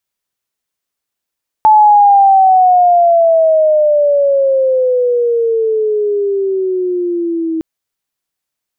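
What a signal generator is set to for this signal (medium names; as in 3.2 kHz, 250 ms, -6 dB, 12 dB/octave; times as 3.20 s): sweep logarithmic 870 Hz -> 320 Hz -3 dBFS -> -14 dBFS 5.96 s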